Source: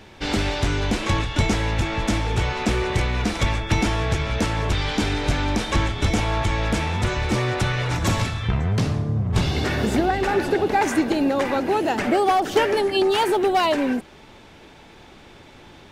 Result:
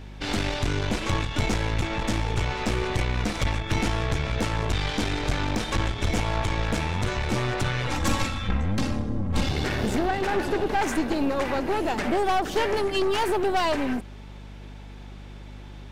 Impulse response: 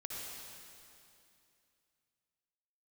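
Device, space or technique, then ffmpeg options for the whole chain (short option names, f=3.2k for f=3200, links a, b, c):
valve amplifier with mains hum: -filter_complex "[0:a]aeval=exprs='(tanh(8.91*val(0)+0.65)-tanh(0.65))/8.91':c=same,aeval=exprs='val(0)+0.01*(sin(2*PI*50*n/s)+sin(2*PI*2*50*n/s)/2+sin(2*PI*3*50*n/s)/3+sin(2*PI*4*50*n/s)/4+sin(2*PI*5*50*n/s)/5)':c=same,asettb=1/sr,asplit=3[a][b][c];[a]atrim=end=7.874[d];[b]atrim=start=7.87:end=9.49,asetpts=PTS-STARTPTS,afade=t=in:d=0.004:c=qsin,afade=t=out:st=1.616:d=0.004:c=qsin,aecho=1:1:3.7:0.75,atrim=end_sample=71442[e];[c]atrim=start=9.486[f];[d][e]acrossfade=d=0.004:c1=hsin:c2=qsin[g];[g][f]acrossfade=d=0.004:c1=qsin:c2=hsin"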